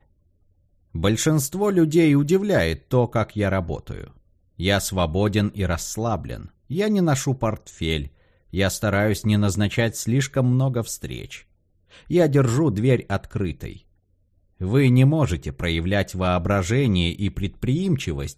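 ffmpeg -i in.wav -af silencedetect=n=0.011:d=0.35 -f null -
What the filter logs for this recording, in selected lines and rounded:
silence_start: 0.00
silence_end: 0.95 | silence_duration: 0.95
silence_start: 4.10
silence_end: 4.59 | silence_duration: 0.49
silence_start: 8.08
silence_end: 8.53 | silence_duration: 0.45
silence_start: 11.40
silence_end: 11.93 | silence_duration: 0.53
silence_start: 13.77
silence_end: 14.61 | silence_duration: 0.83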